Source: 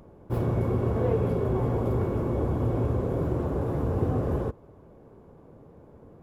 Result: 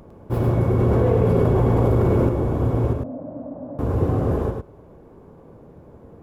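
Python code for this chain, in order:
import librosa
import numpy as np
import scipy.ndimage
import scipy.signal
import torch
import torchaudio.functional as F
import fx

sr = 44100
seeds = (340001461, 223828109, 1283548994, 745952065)

y = fx.rider(x, sr, range_db=4, speed_s=2.0)
y = fx.double_bandpass(y, sr, hz=400.0, octaves=1.2, at=(2.93, 3.79))
y = y + 10.0 ** (-4.0 / 20.0) * np.pad(y, (int(104 * sr / 1000.0), 0))[:len(y)]
y = fx.env_flatten(y, sr, amount_pct=100, at=(0.79, 2.29))
y = F.gain(torch.from_numpy(y), 3.5).numpy()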